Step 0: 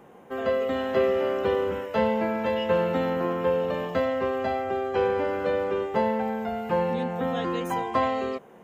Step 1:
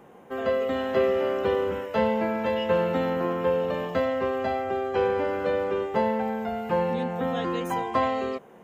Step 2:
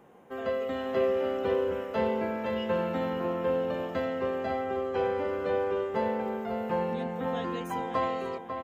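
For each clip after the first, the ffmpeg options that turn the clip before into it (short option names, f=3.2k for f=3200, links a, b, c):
-af anull
-filter_complex "[0:a]asplit=2[a][b];[b]adelay=546,lowpass=f=2.7k:p=1,volume=-7dB,asplit=2[c][d];[d]adelay=546,lowpass=f=2.7k:p=1,volume=0.34,asplit=2[e][f];[f]adelay=546,lowpass=f=2.7k:p=1,volume=0.34,asplit=2[g][h];[h]adelay=546,lowpass=f=2.7k:p=1,volume=0.34[i];[a][c][e][g][i]amix=inputs=5:normalize=0,volume=-5.5dB"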